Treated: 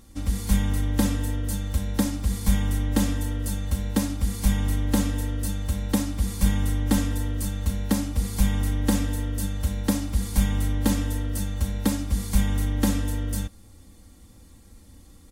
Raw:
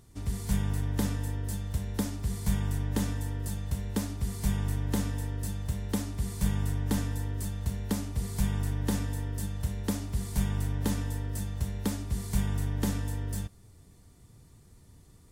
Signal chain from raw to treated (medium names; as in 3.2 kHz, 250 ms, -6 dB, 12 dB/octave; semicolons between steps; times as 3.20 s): comb 3.7 ms, depth 80%; trim +5 dB